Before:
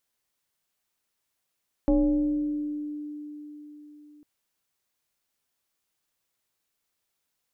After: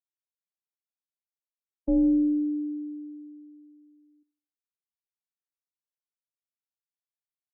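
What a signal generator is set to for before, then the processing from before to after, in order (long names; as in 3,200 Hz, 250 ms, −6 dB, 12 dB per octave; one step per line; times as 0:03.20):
two-operator FM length 2.35 s, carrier 297 Hz, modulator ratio 0.89, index 1, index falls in 1.89 s exponential, decay 4.25 s, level −17 dB
on a send: repeating echo 81 ms, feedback 51%, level −15 dB
on the sum: every bin expanded away from the loudest bin 1.5 to 1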